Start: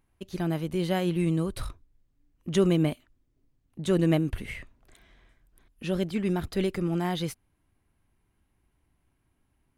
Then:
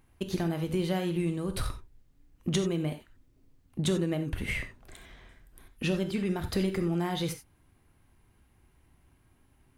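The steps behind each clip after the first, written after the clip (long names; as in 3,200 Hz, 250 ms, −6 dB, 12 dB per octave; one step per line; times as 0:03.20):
downward compressor 12 to 1, threshold −33 dBFS, peak gain reduction 16.5 dB
on a send at −6.5 dB: convolution reverb, pre-delay 3 ms
on the sum: level +7 dB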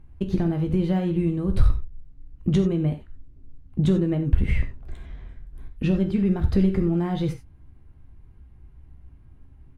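RIAA equalisation playback
double-tracking delay 15 ms −10.5 dB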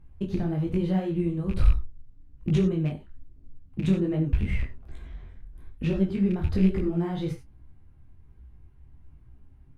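loose part that buzzes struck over −18 dBFS, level −27 dBFS
micro pitch shift up and down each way 41 cents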